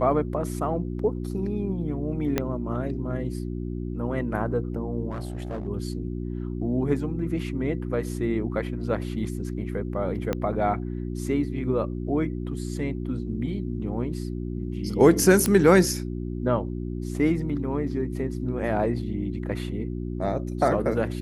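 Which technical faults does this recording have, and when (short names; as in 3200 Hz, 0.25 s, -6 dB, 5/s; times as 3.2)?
hum 60 Hz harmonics 6 -31 dBFS
2.38 pop -9 dBFS
5.11–5.68 clipped -27.5 dBFS
10.33 pop -13 dBFS
15.46 pop -10 dBFS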